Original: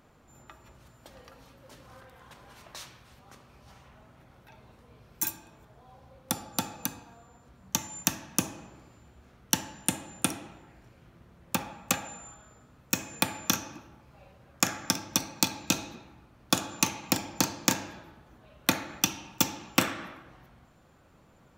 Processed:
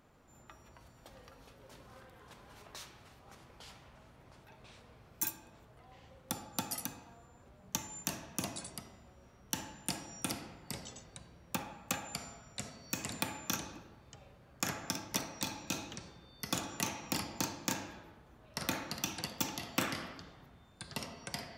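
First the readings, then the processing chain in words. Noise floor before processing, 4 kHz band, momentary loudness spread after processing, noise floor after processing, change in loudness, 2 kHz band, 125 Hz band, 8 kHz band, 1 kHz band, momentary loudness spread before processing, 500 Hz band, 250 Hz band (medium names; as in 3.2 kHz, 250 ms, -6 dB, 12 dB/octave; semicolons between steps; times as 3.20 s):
-59 dBFS, -8.0 dB, 21 LU, -61 dBFS, -9.5 dB, -7.5 dB, -6.0 dB, -9.0 dB, -7.0 dB, 18 LU, -6.5 dB, -8.0 dB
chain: peak limiter -11.5 dBFS, peak gain reduction 9 dB; ever faster or slower copies 141 ms, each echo -4 st, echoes 3, each echo -6 dB; trim -5 dB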